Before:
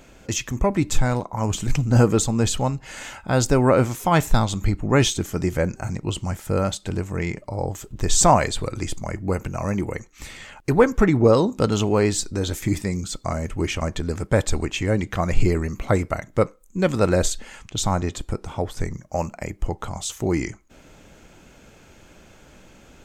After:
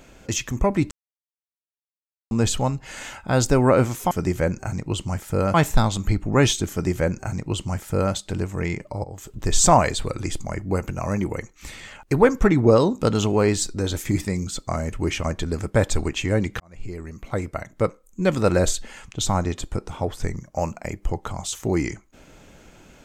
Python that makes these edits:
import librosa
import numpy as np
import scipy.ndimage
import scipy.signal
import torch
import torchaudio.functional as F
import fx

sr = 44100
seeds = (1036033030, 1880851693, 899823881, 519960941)

y = fx.edit(x, sr, fx.silence(start_s=0.91, length_s=1.4),
    fx.duplicate(start_s=5.28, length_s=1.43, to_s=4.11),
    fx.fade_in_from(start_s=7.61, length_s=0.29, floor_db=-20.0),
    fx.fade_in_span(start_s=15.17, length_s=1.63), tone=tone)